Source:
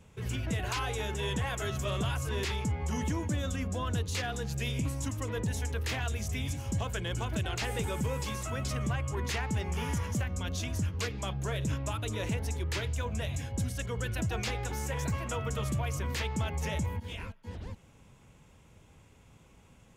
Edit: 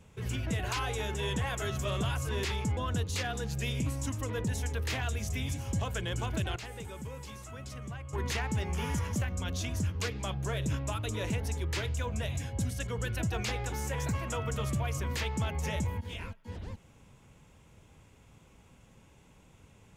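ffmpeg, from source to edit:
ffmpeg -i in.wav -filter_complex "[0:a]asplit=4[link_01][link_02][link_03][link_04];[link_01]atrim=end=2.772[link_05];[link_02]atrim=start=3.758:end=7.552[link_06];[link_03]atrim=start=7.548:end=9.122,asetpts=PTS-STARTPTS,volume=-9.5dB[link_07];[link_04]atrim=start=9.118[link_08];[link_05][link_06]acrossfade=duration=0.004:curve1=hsin:curve2=hsin[link_09];[link_09][link_07]acrossfade=duration=0.004:curve1=hsin:curve2=hsin[link_10];[link_10][link_08]acrossfade=duration=0.004:curve1=hsin:curve2=hsin" out.wav

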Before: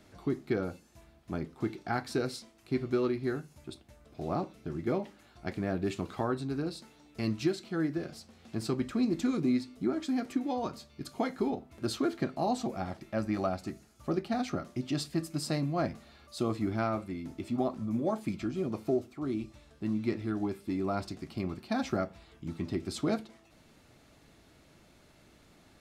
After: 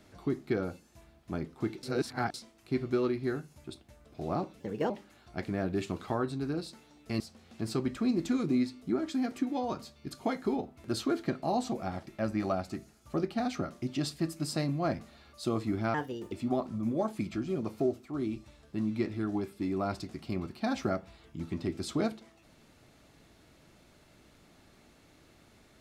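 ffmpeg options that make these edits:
ffmpeg -i in.wav -filter_complex "[0:a]asplit=8[link_01][link_02][link_03][link_04][link_05][link_06][link_07][link_08];[link_01]atrim=end=1.832[link_09];[link_02]atrim=start=1.828:end=2.342,asetpts=PTS-STARTPTS,areverse[link_10];[link_03]atrim=start=2.338:end=4.604[link_11];[link_04]atrim=start=4.6:end=4.99,asetpts=PTS-STARTPTS,asetrate=57330,aresample=44100[link_12];[link_05]atrim=start=4.986:end=7.292[link_13];[link_06]atrim=start=8.138:end=16.884[link_14];[link_07]atrim=start=16.88:end=17.4,asetpts=PTS-STARTPTS,asetrate=59976,aresample=44100[link_15];[link_08]atrim=start=17.396[link_16];[link_09][link_10]acrossfade=duration=0.004:curve1=hsin:curve2=hsin[link_17];[link_17][link_11]acrossfade=duration=0.004:curve1=hsin:curve2=hsin[link_18];[link_18][link_12]acrossfade=duration=0.004:curve1=hsin:curve2=hsin[link_19];[link_19][link_13]acrossfade=duration=0.004:curve1=hsin:curve2=hsin[link_20];[link_20][link_14]acrossfade=duration=0.004:curve1=hsin:curve2=hsin[link_21];[link_21][link_15]acrossfade=duration=0.004:curve1=hsin:curve2=hsin[link_22];[link_22][link_16]acrossfade=duration=0.004:curve1=hsin:curve2=hsin" out.wav

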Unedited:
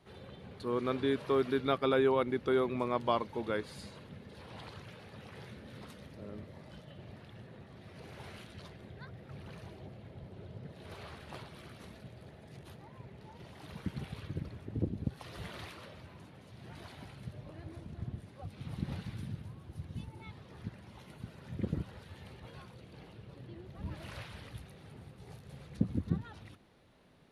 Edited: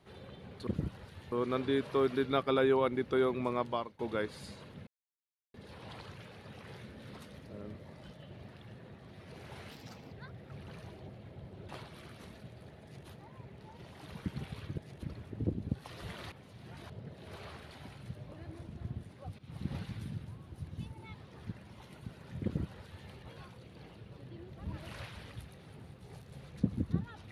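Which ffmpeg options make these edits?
ffmpeg -i in.wav -filter_complex "[0:a]asplit=14[link_01][link_02][link_03][link_04][link_05][link_06][link_07][link_08][link_09][link_10][link_11][link_12][link_13][link_14];[link_01]atrim=end=0.672[link_15];[link_02]atrim=start=21.608:end=22.262[link_16];[link_03]atrim=start=0.668:end=3.34,asetpts=PTS-STARTPTS,afade=type=out:start_time=2.242:duration=0.43:silence=0.0944061[link_17];[link_04]atrim=start=3.34:end=4.22,asetpts=PTS-STARTPTS,afade=type=in:duration=0.004:curve=hsin:silence=0.0944061,afade=type=out:start_time=0.876:duration=0.004:curve=hsin,apad=pad_dur=0.67[link_18];[link_05]atrim=start=4.22:end=8.394,asetpts=PTS-STARTPTS,afade=type=in:duration=0.004:curve=hsin[link_19];[link_06]atrim=start=8.39:end=8.92,asetpts=PTS-STARTPTS,asetrate=56007,aresample=44100[link_20];[link_07]atrim=start=8.916:end=10.482[link_21];[link_08]atrim=start=11.288:end=14.382[link_22];[link_09]atrim=start=12.428:end=12.682[link_23];[link_10]atrim=start=14.378:end=15.672[link_24];[link_11]atrim=start=16.298:end=16.882[link_25];[link_12]atrim=start=10.478:end=11.292[link_26];[link_13]atrim=start=16.878:end=18.56,asetpts=PTS-STARTPTS,afade=type=out:start_time=1.678:duration=0.004:curve=hsin:silence=0.16788[link_27];[link_14]atrim=start=18.56,asetpts=PTS-STARTPTS,afade=type=in:duration=0.39:curve=qsin:silence=0.16788[link_28];[link_15][link_16]acrossfade=duration=0.004:curve1=hsin:curve2=hsin[link_29];[link_17][link_18][link_19]concat=n=3:v=0:a=1[link_30];[link_29][link_30]acrossfade=duration=0.004:curve1=hsin:curve2=hsin[link_31];[link_31][link_20]acrossfade=duration=0.004:curve1=hsin:curve2=hsin[link_32];[link_32][link_21]acrossfade=duration=0.004:curve1=hsin:curve2=hsin[link_33];[link_33][link_22]acrossfade=duration=0.004:curve1=hsin:curve2=hsin[link_34];[link_34][link_23]acrossfade=duration=0.004:curve1=hsin:curve2=hsin[link_35];[link_35][link_24]acrossfade=duration=0.004:curve1=hsin:curve2=hsin[link_36];[link_36][link_25]acrossfade=duration=0.004:curve1=hsin:curve2=hsin[link_37];[link_37][link_26]acrossfade=duration=0.004:curve1=hsin:curve2=hsin[link_38];[link_27][link_28]concat=n=2:v=0:a=1[link_39];[link_38][link_39]acrossfade=duration=0.004:curve1=hsin:curve2=hsin" out.wav

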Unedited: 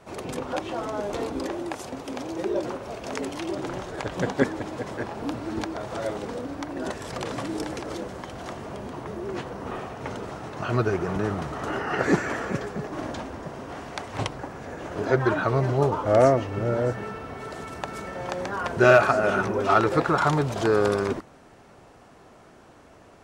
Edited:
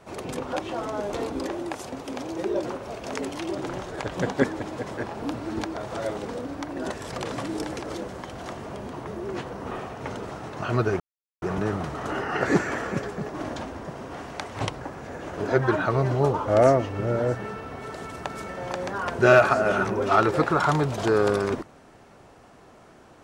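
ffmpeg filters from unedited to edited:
ffmpeg -i in.wav -filter_complex "[0:a]asplit=2[link_01][link_02];[link_01]atrim=end=11,asetpts=PTS-STARTPTS,afade=type=out:start_time=10.996:duration=0.004:curve=hsin,apad=pad_dur=0.42[link_03];[link_02]atrim=start=11,asetpts=PTS-STARTPTS,afade=type=in:duration=0.004:curve=hsin[link_04];[link_03][link_04]concat=n=2:v=0:a=1" out.wav

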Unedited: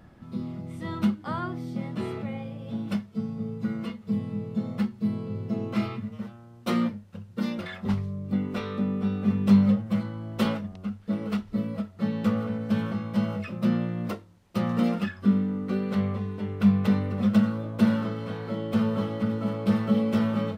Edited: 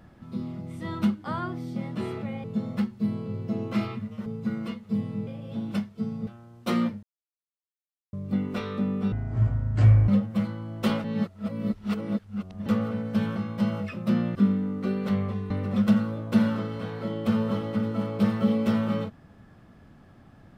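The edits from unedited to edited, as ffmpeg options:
ffmpeg -i in.wav -filter_complex "[0:a]asplit=13[link_01][link_02][link_03][link_04][link_05][link_06][link_07][link_08][link_09][link_10][link_11][link_12][link_13];[link_01]atrim=end=2.442[link_14];[link_02]atrim=start=4.448:end=6.272[link_15];[link_03]atrim=start=3.438:end=4.452[link_16];[link_04]atrim=start=2.438:end=3.442[link_17];[link_05]atrim=start=6.268:end=7.03,asetpts=PTS-STARTPTS,afade=type=out:start_time=0.758:duration=0.004:curve=hsin[link_18];[link_06]atrim=start=7.03:end=8.13,asetpts=PTS-STARTPTS,volume=0[link_19];[link_07]atrim=start=8.13:end=9.124,asetpts=PTS-STARTPTS,afade=type=in:duration=0.004:curve=hsin[link_20];[link_08]atrim=start=9.12:end=9.64,asetpts=PTS-STARTPTS,asetrate=23814,aresample=44100[link_21];[link_09]atrim=start=9.636:end=10.602[link_22];[link_10]atrim=start=10.598:end=12.222,asetpts=PTS-STARTPTS,areverse[link_23];[link_11]atrim=start=12.218:end=13.912[link_24];[link_12]atrim=start=15.208:end=16.362[link_25];[link_13]atrim=start=16.968[link_26];[link_14][link_15]acrossfade=duration=0.004:curve1=hsin:curve2=hsin[link_27];[link_27][link_16]acrossfade=duration=0.004:curve1=hsin:curve2=hsin[link_28];[link_28][link_17]acrossfade=duration=0.004:curve1=hsin:curve2=hsin[link_29];[link_18][link_19][link_20]concat=n=3:v=0:a=1[link_30];[link_29][link_30]acrossfade=duration=0.004:curve1=hsin:curve2=hsin[link_31];[link_31][link_21]acrossfade=duration=0.004:curve1=hsin:curve2=hsin[link_32];[link_32][link_22]acrossfade=duration=0.004:curve1=hsin:curve2=hsin[link_33];[link_33][link_23]acrossfade=duration=0.004:curve1=hsin:curve2=hsin[link_34];[link_34][link_24]acrossfade=duration=0.004:curve1=hsin:curve2=hsin[link_35];[link_35][link_25]acrossfade=duration=0.004:curve1=hsin:curve2=hsin[link_36];[link_36][link_26]acrossfade=duration=0.004:curve1=hsin:curve2=hsin" out.wav

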